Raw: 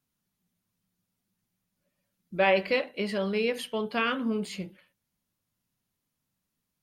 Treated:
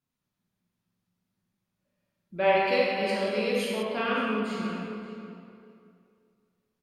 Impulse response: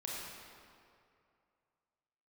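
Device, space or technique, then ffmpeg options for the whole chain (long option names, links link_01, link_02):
swimming-pool hall: -filter_complex "[1:a]atrim=start_sample=2205[link_01];[0:a][link_01]afir=irnorm=-1:irlink=0,highshelf=frequency=5900:gain=-8,asettb=1/sr,asplit=3[link_02][link_03][link_04];[link_02]atrim=end=2.674[link_05];[link_03]atrim=start=2.67:end=3.83,asetpts=PTS-STARTPTS,afade=type=in:duration=0.004:curve=qsin,afade=type=out:start_time=1.156:duration=0.004:curve=qsin,bass=frequency=250:gain=-1,treble=frequency=4000:gain=11[link_06];[link_04]atrim=start=3.826[link_07];[link_05][link_06]acrossfade=duration=0.004:curve1=hsin:curve2=qsin[link_08];[link_08][link_07]acrossfade=duration=0.004:curve1=qsin:curve2=hsin,asplit=2[link_09][link_10];[link_10]adelay=576,lowpass=frequency=2500:poles=1,volume=-13dB,asplit=2[link_11][link_12];[link_12]adelay=576,lowpass=frequency=2500:poles=1,volume=0.15[link_13];[link_09][link_11][link_13]amix=inputs=3:normalize=0"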